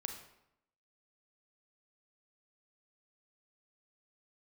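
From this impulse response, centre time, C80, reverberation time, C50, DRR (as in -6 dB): 23 ms, 9.5 dB, 0.80 s, 7.0 dB, 4.5 dB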